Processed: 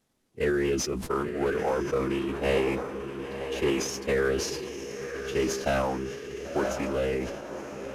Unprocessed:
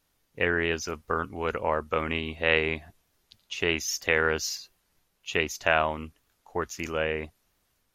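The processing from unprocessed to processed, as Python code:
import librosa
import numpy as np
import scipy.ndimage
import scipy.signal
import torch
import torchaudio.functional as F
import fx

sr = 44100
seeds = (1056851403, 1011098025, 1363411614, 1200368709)

y = fx.cvsd(x, sr, bps=64000)
y = fx.peak_eq(y, sr, hz=280.0, db=11.0, octaves=2.3)
y = fx.echo_diffused(y, sr, ms=1002, feedback_pct=50, wet_db=-8)
y = fx.pitch_keep_formants(y, sr, semitones=-3.0)
y = fx.sustainer(y, sr, db_per_s=49.0)
y = F.gain(torch.from_numpy(y), -5.0).numpy()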